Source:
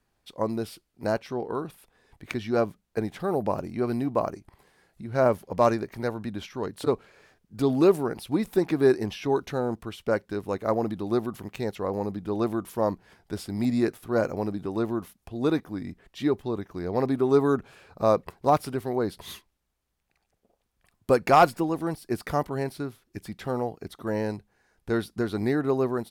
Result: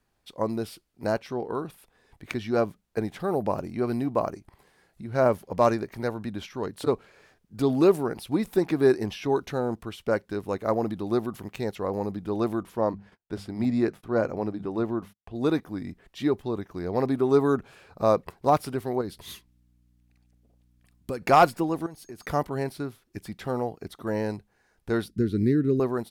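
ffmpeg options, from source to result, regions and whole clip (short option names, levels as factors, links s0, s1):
-filter_complex "[0:a]asettb=1/sr,asplit=3[s0][s1][s2];[s0]atrim=end=12.634[s3];[s1]atrim=start=12.63:end=15.35,asetpts=PTS-STARTPTS,afade=t=in:d=0.004:c=qsin,afade=t=out:st=2.716:d=0.004:c=qsin,lowpass=f=3000:p=1,bandreject=f=50:t=h:w=6,bandreject=f=100:t=h:w=6,bandreject=f=150:t=h:w=6,bandreject=f=200:t=h:w=6,agate=range=0.0178:threshold=0.00158:ratio=16:release=100:detection=peak[s4];[s2]atrim=start=15.346[s5];[s3][s4]acrossfade=d=0.004:c1=hsin:c2=qsin[s6];[s6][s5]acrossfade=d=0.004:c1=qsin:c2=hsin,asettb=1/sr,asplit=3[s7][s8][s9];[s7]atrim=end=19.014[s10];[s8]atrim=start=19.01:end=21.22,asetpts=PTS-STARTPTS,afade=t=in:d=0.004:c=qsin,afade=t=out:st=2.206:d=0.004:c=qsin,equalizer=f=860:w=0.64:g=-6,acompressor=threshold=0.0355:ratio=3:attack=3.2:release=140:knee=1:detection=peak,aeval=exprs='val(0)+0.000794*(sin(2*PI*60*n/s)+sin(2*PI*2*60*n/s)/2+sin(2*PI*3*60*n/s)/3+sin(2*PI*4*60*n/s)/4+sin(2*PI*5*60*n/s)/5)':c=same[s11];[s9]atrim=start=21.216[s12];[s10][s11]acrossfade=d=0.004:c1=hsin:c2=qsin[s13];[s13][s12]acrossfade=d=0.004:c1=qsin:c2=hsin,asettb=1/sr,asplit=3[s14][s15][s16];[s14]atrim=end=21.864[s17];[s15]atrim=start=21.86:end=22.26,asetpts=PTS-STARTPTS,afade=t=in:d=0.004:c=qsin,afade=t=out:st=0.396:d=0.004:c=qsin,aeval=exprs='val(0)+0.00126*sin(2*PI*6500*n/s)':c=same,acompressor=threshold=0.0126:ratio=6:attack=3.2:release=140:knee=1:detection=peak[s18];[s16]atrim=start=22.256[s19];[s17][s18]acrossfade=d=0.004:c1=hsin:c2=qsin[s20];[s20][s19]acrossfade=d=0.004:c1=qsin:c2=hsin,asettb=1/sr,asplit=3[s21][s22][s23];[s21]atrim=end=25.084[s24];[s22]atrim=start=25.08:end=25.8,asetpts=PTS-STARTPTS,afade=t=in:d=0.004:c=qsin,afade=t=out:st=0.716:d=0.004:c=qsin,asuperstop=centerf=830:order=4:qfactor=0.64,tiltshelf=f=660:g=6.5[s25];[s23]atrim=start=25.796[s26];[s24][s25]acrossfade=d=0.004:c1=hsin:c2=qsin[s27];[s27][s26]acrossfade=d=0.004:c1=qsin:c2=hsin"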